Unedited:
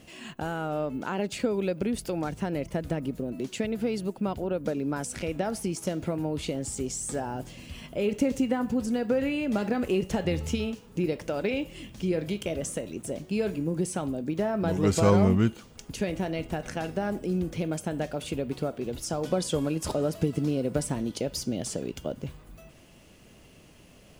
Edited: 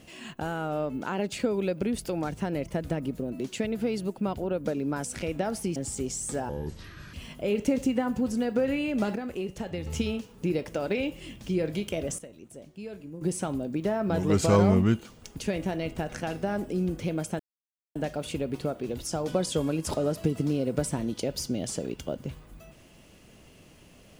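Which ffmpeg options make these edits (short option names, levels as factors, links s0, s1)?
-filter_complex "[0:a]asplit=9[s0][s1][s2][s3][s4][s5][s6][s7][s8];[s0]atrim=end=5.762[s9];[s1]atrim=start=6.558:end=7.294[s10];[s2]atrim=start=7.29:end=7.67,asetpts=PTS-STARTPTS,asetrate=26019,aresample=44100,atrim=end_sample=28403,asetpts=PTS-STARTPTS[s11];[s3]atrim=start=7.666:end=9.692[s12];[s4]atrim=start=9.688:end=10.402,asetpts=PTS-STARTPTS,volume=0.447[s13];[s5]atrim=start=10.398:end=12.722[s14];[s6]atrim=start=12.718:end=13.752,asetpts=PTS-STARTPTS,volume=0.251[s15];[s7]atrim=start=13.748:end=17.93,asetpts=PTS-STARTPTS,afade=t=out:st=4.178:d=0.004:c=hsin,apad=pad_dur=0.56[s16];[s8]atrim=start=17.93,asetpts=PTS-STARTPTS,afade=t=in:d=0.004:c=hsin[s17];[s9][s10]acrossfade=d=0.004:c1=hsin:c2=hsin[s18];[s18][s11]acrossfade=d=0.004:c1=hsin:c2=hsin[s19];[s19][s12]acrossfade=d=0.004:c1=hsin:c2=hsin[s20];[s20][s13]acrossfade=d=0.004:c1=hsin:c2=hsin[s21];[s21][s14]acrossfade=d=0.004:c1=hsin:c2=hsin[s22];[s22][s15]acrossfade=d=0.004:c1=hsin:c2=hsin[s23];[s16][s17]concat=n=2:v=0:a=1[s24];[s23][s24]acrossfade=d=0.004:c1=hsin:c2=hsin"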